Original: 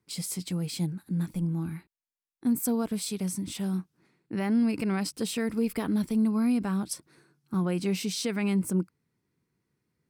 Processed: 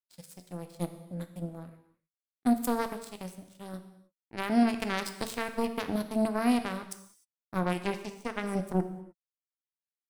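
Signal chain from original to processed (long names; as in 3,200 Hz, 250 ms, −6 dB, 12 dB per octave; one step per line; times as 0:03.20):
0:04.78–0:05.35: high-shelf EQ 2,500 Hz +4 dB
0:08.00–0:08.60: healed spectral selection 2,100–5,800 Hz both
power curve on the samples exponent 3
reverb whose tail is shaped and stops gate 330 ms falling, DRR 7.5 dB
level +5 dB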